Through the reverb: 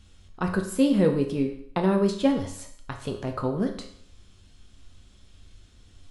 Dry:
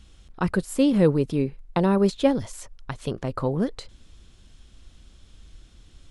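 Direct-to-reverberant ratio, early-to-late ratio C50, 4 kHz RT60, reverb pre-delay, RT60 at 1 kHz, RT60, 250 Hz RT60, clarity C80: 3.0 dB, 8.5 dB, 0.60 s, 5 ms, 0.60 s, 0.65 s, 0.60 s, 11.5 dB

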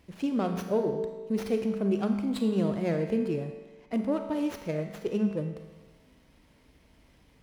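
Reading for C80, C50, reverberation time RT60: 8.5 dB, 6.5 dB, 1.3 s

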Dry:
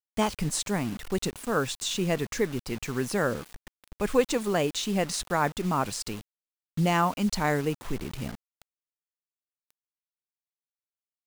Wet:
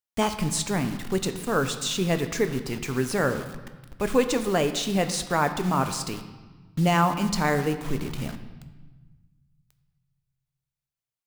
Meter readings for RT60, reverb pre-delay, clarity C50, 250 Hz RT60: 1.3 s, 7 ms, 10.5 dB, 2.0 s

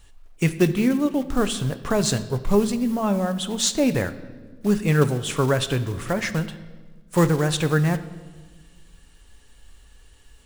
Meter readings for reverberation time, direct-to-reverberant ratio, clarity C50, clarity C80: 1.4 s, 10.5 dB, 14.0 dB, 16.0 dB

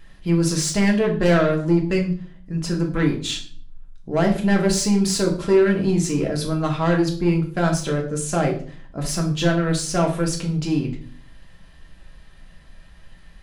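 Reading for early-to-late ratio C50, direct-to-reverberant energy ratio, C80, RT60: 9.5 dB, 0.0 dB, 14.0 dB, 0.45 s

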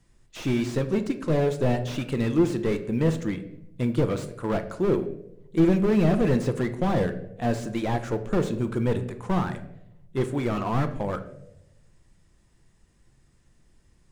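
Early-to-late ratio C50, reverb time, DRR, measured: 12.0 dB, 0.90 s, 8.0 dB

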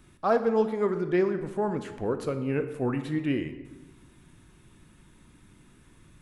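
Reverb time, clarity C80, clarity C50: 1.2 s, 13.0 dB, 11.0 dB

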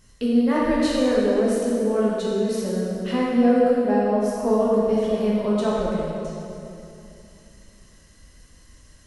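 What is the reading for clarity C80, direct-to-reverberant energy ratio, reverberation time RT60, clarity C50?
-1.0 dB, -6.5 dB, 2.7 s, -2.5 dB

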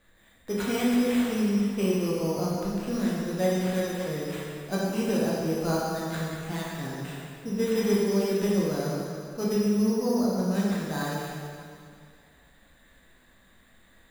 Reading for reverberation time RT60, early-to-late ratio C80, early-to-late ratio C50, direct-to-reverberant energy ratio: 2.2 s, 0.0 dB, -2.5 dB, -6.5 dB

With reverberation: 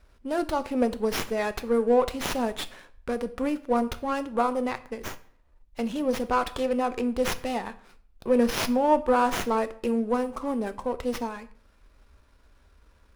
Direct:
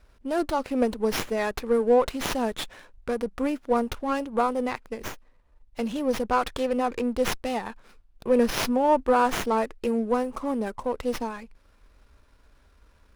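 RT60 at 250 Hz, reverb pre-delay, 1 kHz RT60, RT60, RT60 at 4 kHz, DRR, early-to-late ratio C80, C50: 0.65 s, 5 ms, 0.50 s, 0.50 s, 0.45 s, 11.5 dB, 20.5 dB, 17.5 dB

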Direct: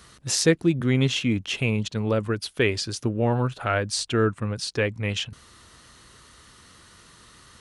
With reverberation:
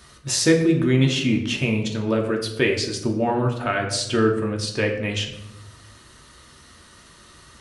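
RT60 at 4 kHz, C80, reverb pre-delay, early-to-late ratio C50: 0.55 s, 10.0 dB, 3 ms, 7.5 dB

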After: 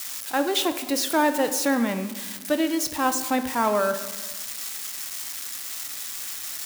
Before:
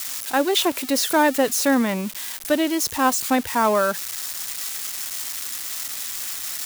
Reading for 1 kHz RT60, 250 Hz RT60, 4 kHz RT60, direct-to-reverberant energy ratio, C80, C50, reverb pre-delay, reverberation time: 1.2 s, 1.6 s, 0.75 s, 8.5 dB, 13.0 dB, 11.0 dB, 4 ms, 1.2 s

